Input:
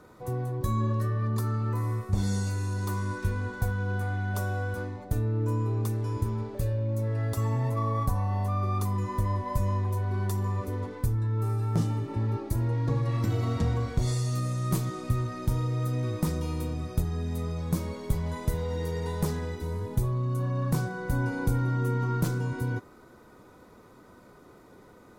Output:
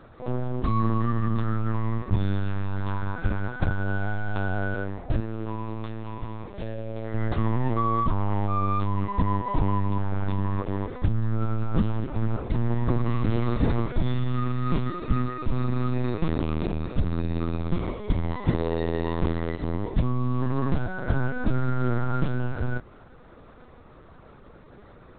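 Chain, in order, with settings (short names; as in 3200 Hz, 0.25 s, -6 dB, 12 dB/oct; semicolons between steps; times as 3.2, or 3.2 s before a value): CVSD 64 kbps; 5.2–7.14 low shelf 490 Hz -9.5 dB; LPC vocoder at 8 kHz pitch kept; gain +4.5 dB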